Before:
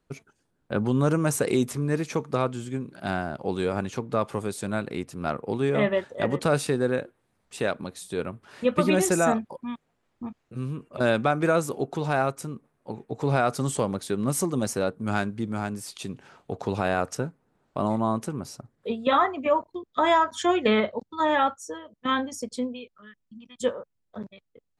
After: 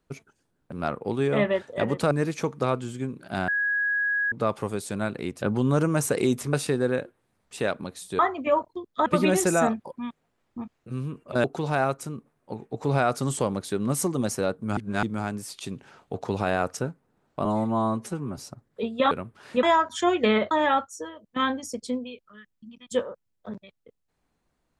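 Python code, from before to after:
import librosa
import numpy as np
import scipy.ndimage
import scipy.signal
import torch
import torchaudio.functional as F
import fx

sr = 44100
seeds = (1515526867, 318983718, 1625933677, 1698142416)

y = fx.edit(x, sr, fx.swap(start_s=0.72, length_s=1.11, other_s=5.14, other_length_s=1.39),
    fx.bleep(start_s=3.2, length_s=0.84, hz=1660.0, db=-22.0),
    fx.swap(start_s=8.19, length_s=0.52, other_s=19.18, other_length_s=0.87),
    fx.cut(start_s=11.09, length_s=0.73),
    fx.reverse_span(start_s=15.15, length_s=0.26),
    fx.stretch_span(start_s=17.83, length_s=0.62, factor=1.5),
    fx.cut(start_s=20.93, length_s=0.27), tone=tone)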